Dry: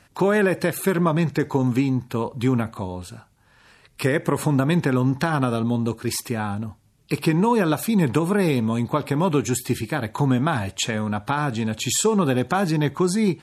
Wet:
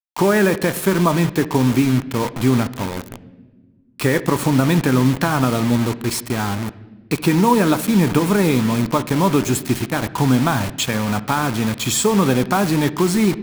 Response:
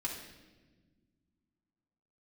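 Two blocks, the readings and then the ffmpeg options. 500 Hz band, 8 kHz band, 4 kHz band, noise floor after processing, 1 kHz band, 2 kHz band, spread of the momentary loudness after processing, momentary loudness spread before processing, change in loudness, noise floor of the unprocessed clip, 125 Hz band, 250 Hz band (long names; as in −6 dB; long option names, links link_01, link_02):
+3.0 dB, +4.0 dB, +5.5 dB, −49 dBFS, +4.5 dB, +4.0 dB, 7 LU, 7 LU, +4.0 dB, −58 dBFS, +3.5 dB, +4.5 dB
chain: -filter_complex "[0:a]acrusher=bits=4:mix=0:aa=0.000001,asplit=2[link_01][link_02];[1:a]atrim=start_sample=2205,lowpass=3200[link_03];[link_02][link_03]afir=irnorm=-1:irlink=0,volume=-11.5dB[link_04];[link_01][link_04]amix=inputs=2:normalize=0,volume=2.5dB"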